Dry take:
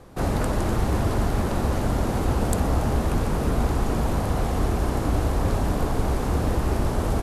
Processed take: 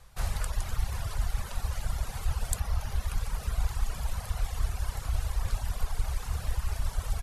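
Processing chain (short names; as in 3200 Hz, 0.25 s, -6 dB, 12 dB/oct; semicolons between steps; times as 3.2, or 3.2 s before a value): passive tone stack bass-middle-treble 10-0-10; reverb removal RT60 1.7 s; low shelf 100 Hz +6 dB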